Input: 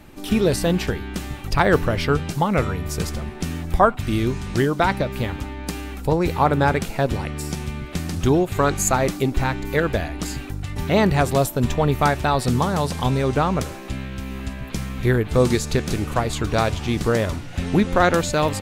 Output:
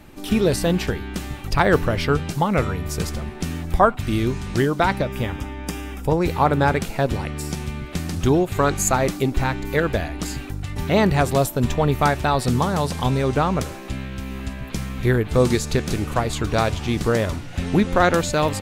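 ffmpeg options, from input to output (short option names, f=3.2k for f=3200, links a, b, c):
-filter_complex "[0:a]asettb=1/sr,asplit=3[a][b][c];[a]atrim=end=5.024[d];[b]atrim=start=5.02:end=6.18,asetpts=PTS-STARTPTS,afade=t=in:d=0.004:c=qsin,afade=t=out:st=1.156:d=0.004:c=qsin,asuperstop=centerf=4200:order=4:qfactor=6[e];[c]atrim=start=6.176[f];[d][e]acrossfade=d=0.004:c1=hsin:c2=qsin[g];[g][f]acrossfade=d=0.004:c1=qsin:c2=hsin"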